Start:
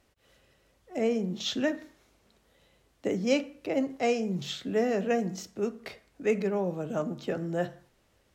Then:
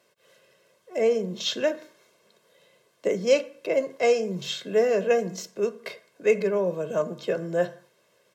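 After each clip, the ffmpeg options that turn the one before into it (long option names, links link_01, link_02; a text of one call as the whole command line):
ffmpeg -i in.wav -af "highpass=frequency=170:width=0.5412,highpass=frequency=170:width=1.3066,aecho=1:1:1.9:0.73,volume=3dB" out.wav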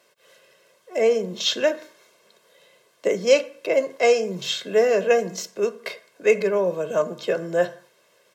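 ffmpeg -i in.wav -af "lowshelf=frequency=270:gain=-9,volume=5.5dB" out.wav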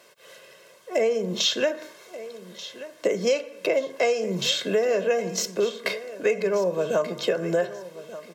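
ffmpeg -i in.wav -af "acompressor=threshold=-27dB:ratio=6,aecho=1:1:1184|2368|3552:0.168|0.047|0.0132,volume=6.5dB" out.wav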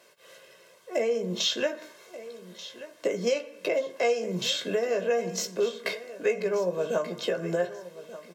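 ffmpeg -i in.wav -filter_complex "[0:a]asplit=2[link_01][link_02];[link_02]adelay=17,volume=-7.5dB[link_03];[link_01][link_03]amix=inputs=2:normalize=0,volume=-4.5dB" out.wav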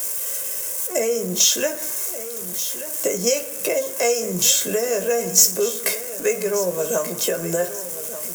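ffmpeg -i in.wav -af "aeval=exprs='val(0)+0.5*0.00841*sgn(val(0))':channel_layout=same,aexciter=amount=5:drive=9.7:freq=6000,volume=4dB" out.wav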